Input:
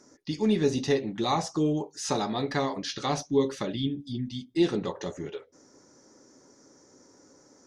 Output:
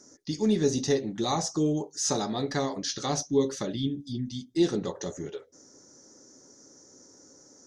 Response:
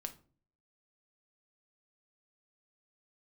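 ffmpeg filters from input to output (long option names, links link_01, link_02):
-af "equalizer=frequency=1000:width_type=o:width=0.67:gain=-4,equalizer=frequency=2500:width_type=o:width=0.67:gain=-7,equalizer=frequency=6300:width_type=o:width=0.67:gain=8"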